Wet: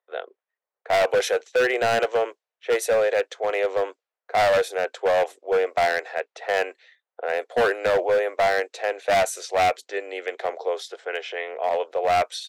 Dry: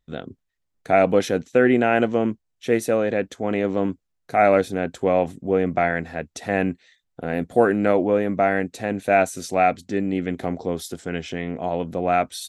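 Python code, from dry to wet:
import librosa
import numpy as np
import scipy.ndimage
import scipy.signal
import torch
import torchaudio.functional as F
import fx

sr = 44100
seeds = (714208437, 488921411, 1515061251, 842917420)

y = fx.env_lowpass(x, sr, base_hz=1400.0, full_db=-17.5)
y = scipy.signal.sosfilt(scipy.signal.butter(8, 440.0, 'highpass', fs=sr, output='sos'), y)
y = np.clip(y, -10.0 ** (-20.0 / 20.0), 10.0 ** (-20.0 / 20.0))
y = y * 10.0 ** (3.5 / 20.0)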